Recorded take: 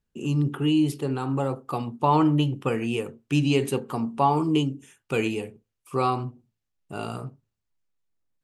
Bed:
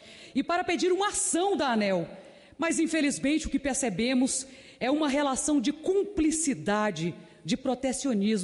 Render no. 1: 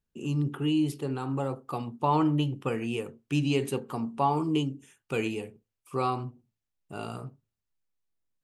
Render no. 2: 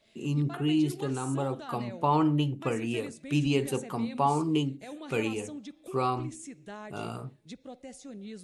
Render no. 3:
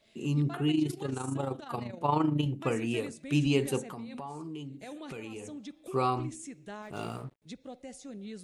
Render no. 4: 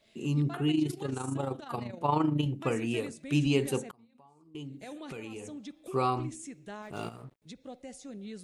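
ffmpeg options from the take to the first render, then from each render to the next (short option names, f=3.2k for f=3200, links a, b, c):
-af "volume=-4.5dB"
-filter_complex "[1:a]volume=-16.5dB[a];[0:a][a]amix=inputs=2:normalize=0"
-filter_complex "[0:a]asettb=1/sr,asplit=3[a][b][c];[a]atrim=end=0.714[d];[b]atrim=start=0.71:end=2.46,asetpts=PTS-STARTPTS,afade=t=in:d=0.004:c=qsin,afade=t=out:st=1.746:d=0.004:c=qsin,tremolo=f=26:d=0.621[e];[c]atrim=start=2.456[f];[d][e]acrossfade=d=0.004:c1=hsin:c2=qsin[g];[g][f]acrossfade=d=0.004:c1=qsin:c2=hsin,asettb=1/sr,asplit=3[h][i][j];[h]atrim=end=3.814[k];[i]atrim=start=3.81:end=5.61,asetpts=PTS-STARTPTS,afade=t=in:d=0.004:c=qsin,afade=t=out:st=1.796:d=0.004:c=qsin,acompressor=threshold=-38dB:ratio=6:attack=3.2:release=140:knee=1:detection=peak[l];[j]atrim=start=5.606[m];[k][l]acrossfade=d=0.004:c1=hsin:c2=qsin[n];[n][m]acrossfade=d=0.004:c1=qsin:c2=hsin,asettb=1/sr,asplit=3[o][p][q];[o]atrim=end=6.824[r];[p]atrim=start=6.82:end=7.42,asetpts=PTS-STARTPTS,afade=t=in:d=0.004:c=qsin,afade=t=out:st=0.596:d=0.004:c=qsin,aeval=exprs='sgn(val(0))*max(abs(val(0))-0.00224,0)':c=same[s];[q]atrim=start=7.416[t];[r][s]acrossfade=d=0.004:c1=hsin:c2=qsin[u];[u][t]acrossfade=d=0.004:c1=qsin:c2=hsin"
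-filter_complex "[0:a]asettb=1/sr,asplit=3[a][b][c];[a]atrim=end=3.914[d];[b]atrim=start=3.91:end=4.55,asetpts=PTS-STARTPTS,afade=t=in:d=0.004:c=qsin,afade=t=out:st=0.636:d=0.004:c=qsin,agate=range=-33dB:threshold=-29dB:ratio=3:release=100:detection=peak[e];[c]atrim=start=4.546[f];[d][e]acrossfade=d=0.004:c1=hsin:c2=qsin[g];[g][f]acrossfade=d=0.004:c1=qsin:c2=hsin,asplit=3[h][i][j];[h]afade=t=out:st=7.08:d=0.02[k];[i]acompressor=threshold=-41dB:ratio=6:attack=3.2:release=140:knee=1:detection=peak,afade=t=in:st=7.08:d=0.02,afade=t=out:st=7.66:d=0.02[l];[j]afade=t=in:st=7.66:d=0.02[m];[k][l][m]amix=inputs=3:normalize=0"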